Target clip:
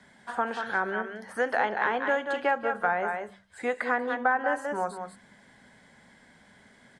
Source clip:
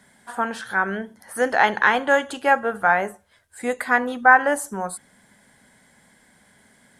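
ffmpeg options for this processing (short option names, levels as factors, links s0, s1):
-filter_complex "[0:a]lowpass=5300,bandreject=f=48.55:t=h:w=4,bandreject=f=97.1:t=h:w=4,bandreject=f=145.65:t=h:w=4,bandreject=f=194.2:t=h:w=4,asplit=2[s0][s1];[s1]aecho=0:1:185:0.335[s2];[s0][s2]amix=inputs=2:normalize=0,acrossover=split=300|680|2900[s3][s4][s5][s6];[s3]acompressor=threshold=0.00501:ratio=4[s7];[s4]acompressor=threshold=0.0316:ratio=4[s8];[s5]acompressor=threshold=0.0398:ratio=4[s9];[s6]acompressor=threshold=0.00282:ratio=4[s10];[s7][s8][s9][s10]amix=inputs=4:normalize=0"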